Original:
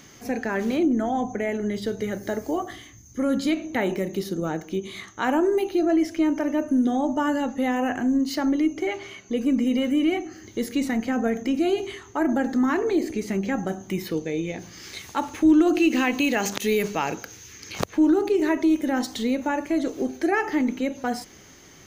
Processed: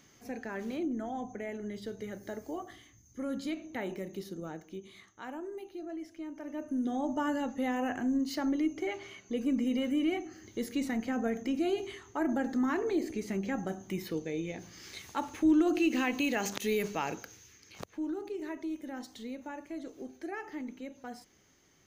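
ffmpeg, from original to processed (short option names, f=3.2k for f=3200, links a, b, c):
-af "volume=-0.5dB,afade=t=out:st=4.19:d=1.17:silence=0.421697,afade=t=in:st=6.34:d=0.8:silence=0.251189,afade=t=out:st=17.18:d=0.46:silence=0.354813"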